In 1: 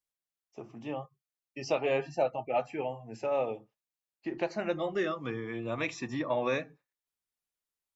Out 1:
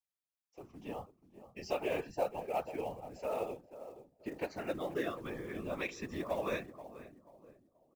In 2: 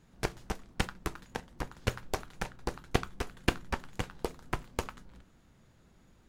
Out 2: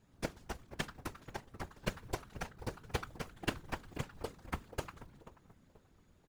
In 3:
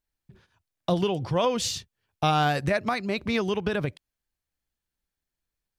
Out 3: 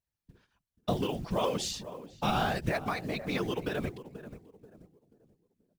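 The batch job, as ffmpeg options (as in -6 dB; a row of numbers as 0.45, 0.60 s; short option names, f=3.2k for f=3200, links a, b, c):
-filter_complex "[0:a]asplit=2[a][b];[b]adelay=484,lowpass=f=970:p=1,volume=-12dB,asplit=2[c][d];[d]adelay=484,lowpass=f=970:p=1,volume=0.37,asplit=2[e][f];[f]adelay=484,lowpass=f=970:p=1,volume=0.37,asplit=2[g][h];[h]adelay=484,lowpass=f=970:p=1,volume=0.37[i];[a][c][e][g][i]amix=inputs=5:normalize=0,acrusher=bits=6:mode=log:mix=0:aa=0.000001,afftfilt=real='hypot(re,im)*cos(2*PI*random(0))':imag='hypot(re,im)*sin(2*PI*random(1))':win_size=512:overlap=0.75"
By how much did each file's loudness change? -6.0, -6.0, -6.0 LU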